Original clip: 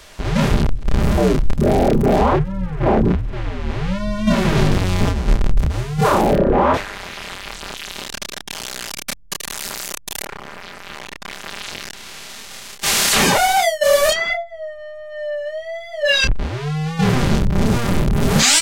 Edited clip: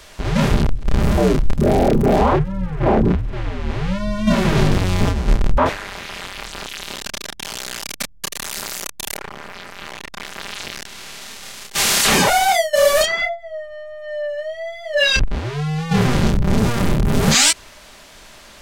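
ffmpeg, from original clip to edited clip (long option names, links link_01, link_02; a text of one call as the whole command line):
ffmpeg -i in.wav -filter_complex "[0:a]asplit=2[link_01][link_02];[link_01]atrim=end=5.582[link_03];[link_02]atrim=start=6.658[link_04];[link_03][link_04]acrossfade=duration=0.004:curve1=hsin:curve2=hsin" out.wav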